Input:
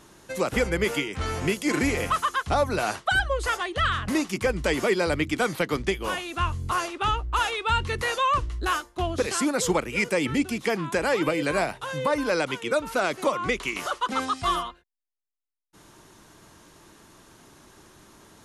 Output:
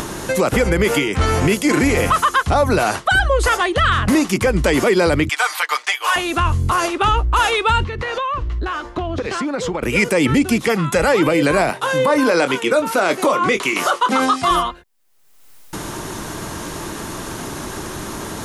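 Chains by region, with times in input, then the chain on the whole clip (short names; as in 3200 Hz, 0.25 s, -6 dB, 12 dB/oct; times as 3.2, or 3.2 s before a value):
5.29–6.16 HPF 850 Hz 24 dB/oct + bell 11000 Hz -4 dB 0.4 oct + comb 6.6 ms, depth 80%
7.84–9.83 LPF 3800 Hz + compressor, threshold -36 dBFS
10.67–11.08 notch 670 Hz, Q 5.9 + comb 1.5 ms, depth 53% + three-band expander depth 40%
11.7–14.51 HPF 190 Hz + doubler 23 ms -10 dB
whole clip: bell 3800 Hz -3 dB 2.3 oct; upward compressor, threshold -30 dBFS; maximiser +19.5 dB; gain -6 dB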